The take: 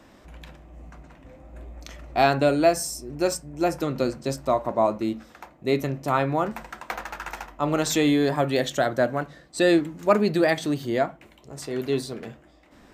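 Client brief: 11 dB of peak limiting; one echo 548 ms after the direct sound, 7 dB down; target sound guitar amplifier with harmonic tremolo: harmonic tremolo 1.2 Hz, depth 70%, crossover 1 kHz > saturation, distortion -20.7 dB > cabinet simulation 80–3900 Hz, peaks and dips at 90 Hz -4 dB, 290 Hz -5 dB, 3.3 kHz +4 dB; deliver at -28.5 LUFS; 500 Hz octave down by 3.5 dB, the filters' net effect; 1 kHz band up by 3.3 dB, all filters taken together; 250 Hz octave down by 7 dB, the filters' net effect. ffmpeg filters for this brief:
-filter_complex "[0:a]equalizer=f=250:t=o:g=-3.5,equalizer=f=500:t=o:g=-7,equalizer=f=1000:t=o:g=8,alimiter=limit=0.178:level=0:latency=1,aecho=1:1:548:0.447,acrossover=split=1000[s0][s1];[s0]aeval=exprs='val(0)*(1-0.7/2+0.7/2*cos(2*PI*1.2*n/s))':c=same[s2];[s1]aeval=exprs='val(0)*(1-0.7/2-0.7/2*cos(2*PI*1.2*n/s))':c=same[s3];[s2][s3]amix=inputs=2:normalize=0,asoftclip=threshold=0.112,highpass=80,equalizer=f=90:t=q:w=4:g=-4,equalizer=f=290:t=q:w=4:g=-5,equalizer=f=3300:t=q:w=4:g=4,lowpass=f=3900:w=0.5412,lowpass=f=3900:w=1.3066,volume=1.68"

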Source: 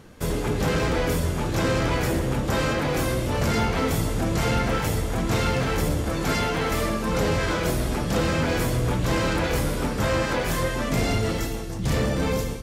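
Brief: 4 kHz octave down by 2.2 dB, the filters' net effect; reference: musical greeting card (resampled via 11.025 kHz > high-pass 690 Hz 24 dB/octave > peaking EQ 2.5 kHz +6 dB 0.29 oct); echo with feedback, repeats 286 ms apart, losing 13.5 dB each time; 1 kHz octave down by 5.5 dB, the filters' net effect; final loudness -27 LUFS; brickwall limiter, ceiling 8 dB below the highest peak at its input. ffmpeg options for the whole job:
-af "equalizer=f=1000:t=o:g=-6.5,equalizer=f=4000:t=o:g=-3.5,alimiter=limit=0.0668:level=0:latency=1,aecho=1:1:286|572:0.211|0.0444,aresample=11025,aresample=44100,highpass=f=690:w=0.5412,highpass=f=690:w=1.3066,equalizer=f=2500:t=o:w=0.29:g=6,volume=3.35"

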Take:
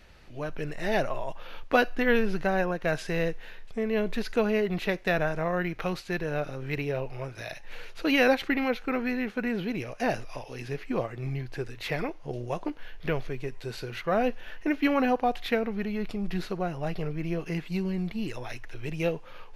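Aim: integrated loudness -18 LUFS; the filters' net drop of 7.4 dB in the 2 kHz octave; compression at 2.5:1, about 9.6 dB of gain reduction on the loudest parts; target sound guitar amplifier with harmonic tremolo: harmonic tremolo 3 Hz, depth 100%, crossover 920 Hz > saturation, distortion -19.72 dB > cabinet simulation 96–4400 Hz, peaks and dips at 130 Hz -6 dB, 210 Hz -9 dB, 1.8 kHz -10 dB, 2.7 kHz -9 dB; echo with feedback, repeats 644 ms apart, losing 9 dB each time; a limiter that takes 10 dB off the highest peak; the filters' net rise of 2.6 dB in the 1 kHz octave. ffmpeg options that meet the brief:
-filter_complex "[0:a]equalizer=f=1000:t=o:g=5.5,equalizer=f=2000:t=o:g=-4,acompressor=threshold=0.0316:ratio=2.5,alimiter=level_in=1.19:limit=0.0631:level=0:latency=1,volume=0.841,aecho=1:1:644|1288|1932|2576:0.355|0.124|0.0435|0.0152,acrossover=split=920[s0][s1];[s0]aeval=exprs='val(0)*(1-1/2+1/2*cos(2*PI*3*n/s))':c=same[s2];[s1]aeval=exprs='val(0)*(1-1/2-1/2*cos(2*PI*3*n/s))':c=same[s3];[s2][s3]amix=inputs=2:normalize=0,asoftclip=threshold=0.0376,highpass=96,equalizer=f=130:t=q:w=4:g=-6,equalizer=f=210:t=q:w=4:g=-9,equalizer=f=1800:t=q:w=4:g=-10,equalizer=f=2700:t=q:w=4:g=-9,lowpass=f=4400:w=0.5412,lowpass=f=4400:w=1.3066,volume=20"

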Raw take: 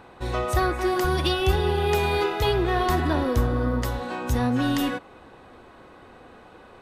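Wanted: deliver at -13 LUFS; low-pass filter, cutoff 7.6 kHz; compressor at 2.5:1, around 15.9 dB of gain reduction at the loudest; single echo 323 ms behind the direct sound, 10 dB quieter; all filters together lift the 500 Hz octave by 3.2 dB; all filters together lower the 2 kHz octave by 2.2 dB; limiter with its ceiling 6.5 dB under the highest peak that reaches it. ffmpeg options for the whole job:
-af "lowpass=7600,equalizer=f=500:t=o:g=4.5,equalizer=f=2000:t=o:g=-3.5,acompressor=threshold=0.00891:ratio=2.5,alimiter=level_in=2:limit=0.0631:level=0:latency=1,volume=0.501,aecho=1:1:323:0.316,volume=21.1"

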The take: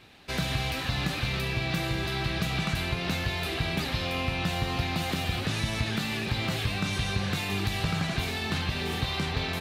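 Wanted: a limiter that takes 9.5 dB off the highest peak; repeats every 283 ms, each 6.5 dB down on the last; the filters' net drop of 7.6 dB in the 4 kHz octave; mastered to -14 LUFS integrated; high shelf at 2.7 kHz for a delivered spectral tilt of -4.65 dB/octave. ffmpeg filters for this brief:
-af "highshelf=f=2700:g=-7.5,equalizer=f=4000:t=o:g=-3.5,alimiter=level_in=1.41:limit=0.0631:level=0:latency=1,volume=0.708,aecho=1:1:283|566|849|1132|1415|1698:0.473|0.222|0.105|0.0491|0.0231|0.0109,volume=10.6"

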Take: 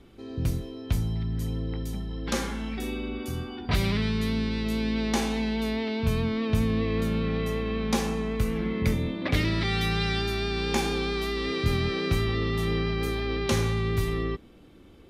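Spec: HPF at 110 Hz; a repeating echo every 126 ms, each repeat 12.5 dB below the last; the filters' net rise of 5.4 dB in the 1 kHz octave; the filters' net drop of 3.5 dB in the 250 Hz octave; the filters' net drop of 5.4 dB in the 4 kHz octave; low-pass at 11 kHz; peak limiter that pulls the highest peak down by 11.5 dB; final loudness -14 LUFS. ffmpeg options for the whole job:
-af "highpass=110,lowpass=11000,equalizer=f=250:t=o:g=-4.5,equalizer=f=1000:t=o:g=7.5,equalizer=f=4000:t=o:g=-7,alimiter=limit=0.0708:level=0:latency=1,aecho=1:1:126|252|378:0.237|0.0569|0.0137,volume=8.91"

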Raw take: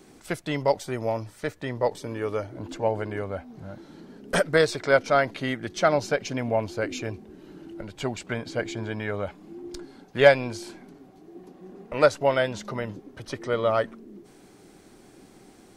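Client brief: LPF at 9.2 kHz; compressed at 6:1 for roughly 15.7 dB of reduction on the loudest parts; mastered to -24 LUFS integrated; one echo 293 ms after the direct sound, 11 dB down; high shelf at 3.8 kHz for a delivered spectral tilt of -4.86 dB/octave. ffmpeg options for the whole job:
-af "lowpass=9200,highshelf=f=3800:g=-4.5,acompressor=threshold=0.0447:ratio=6,aecho=1:1:293:0.282,volume=3.16"

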